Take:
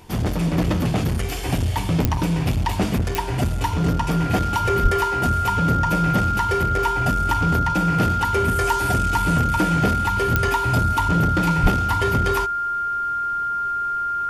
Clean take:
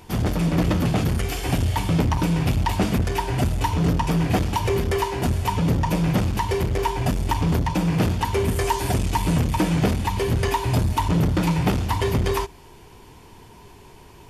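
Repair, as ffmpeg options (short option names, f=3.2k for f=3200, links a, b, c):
-filter_complex "[0:a]adeclick=t=4,bandreject=f=1.4k:w=30,asplit=3[a][b][c];[a]afade=t=out:st=4.82:d=0.02[d];[b]highpass=f=140:w=0.5412,highpass=f=140:w=1.3066,afade=t=in:st=4.82:d=0.02,afade=t=out:st=4.94:d=0.02[e];[c]afade=t=in:st=4.94:d=0.02[f];[d][e][f]amix=inputs=3:normalize=0,asplit=3[g][h][i];[g]afade=t=out:st=11.62:d=0.02[j];[h]highpass=f=140:w=0.5412,highpass=f=140:w=1.3066,afade=t=in:st=11.62:d=0.02,afade=t=out:st=11.74:d=0.02[k];[i]afade=t=in:st=11.74:d=0.02[l];[j][k][l]amix=inputs=3:normalize=0"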